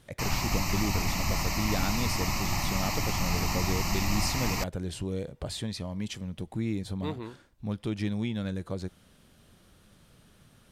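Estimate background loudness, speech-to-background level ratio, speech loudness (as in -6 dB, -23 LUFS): -30.5 LUFS, -4.0 dB, -34.5 LUFS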